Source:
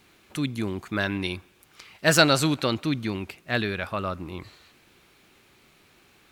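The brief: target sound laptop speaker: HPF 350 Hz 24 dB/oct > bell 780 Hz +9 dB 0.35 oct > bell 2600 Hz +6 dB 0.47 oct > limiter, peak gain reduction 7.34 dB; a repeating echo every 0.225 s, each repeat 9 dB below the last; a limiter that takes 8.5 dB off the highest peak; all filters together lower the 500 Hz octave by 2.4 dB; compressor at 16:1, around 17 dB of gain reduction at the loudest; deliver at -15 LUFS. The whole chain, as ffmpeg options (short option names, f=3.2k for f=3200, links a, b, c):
-af "equalizer=f=500:t=o:g=-5,acompressor=threshold=-30dB:ratio=16,alimiter=level_in=1.5dB:limit=-24dB:level=0:latency=1,volume=-1.5dB,highpass=f=350:w=0.5412,highpass=f=350:w=1.3066,equalizer=f=780:t=o:w=0.35:g=9,equalizer=f=2.6k:t=o:w=0.47:g=6,aecho=1:1:225|450|675|900:0.355|0.124|0.0435|0.0152,volume=26.5dB,alimiter=limit=-2.5dB:level=0:latency=1"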